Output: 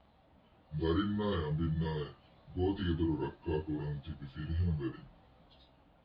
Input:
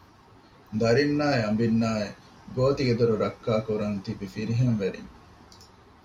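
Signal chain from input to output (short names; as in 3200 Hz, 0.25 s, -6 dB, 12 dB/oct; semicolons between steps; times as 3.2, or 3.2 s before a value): pitch shift by moving bins -6 st; LPF 4600 Hz 24 dB/oct; gain -8.5 dB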